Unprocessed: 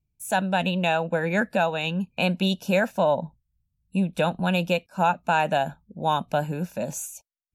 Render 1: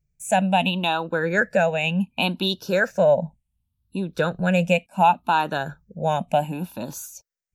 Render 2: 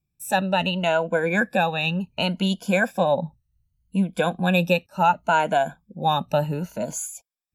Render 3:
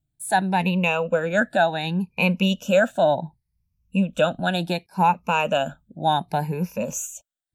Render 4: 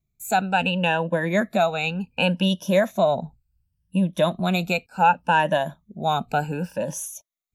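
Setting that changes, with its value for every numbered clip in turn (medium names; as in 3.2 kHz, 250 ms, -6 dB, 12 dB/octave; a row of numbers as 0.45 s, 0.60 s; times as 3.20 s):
drifting ripple filter, ripples per octave: 0.55, 1.8, 0.83, 1.2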